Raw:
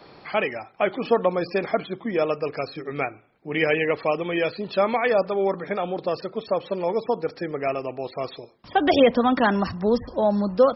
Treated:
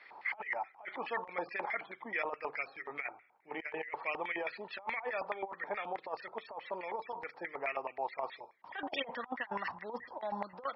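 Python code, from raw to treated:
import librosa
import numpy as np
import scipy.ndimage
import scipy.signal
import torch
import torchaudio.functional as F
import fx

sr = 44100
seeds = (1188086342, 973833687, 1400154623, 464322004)

y = fx.hum_notches(x, sr, base_hz=50, count=3)
y = fx.filter_lfo_bandpass(y, sr, shape='square', hz=4.7, low_hz=890.0, high_hz=2000.0, q=7.8)
y = fx.over_compress(y, sr, threshold_db=-41.0, ratio=-0.5)
y = y * librosa.db_to_amplitude(4.0)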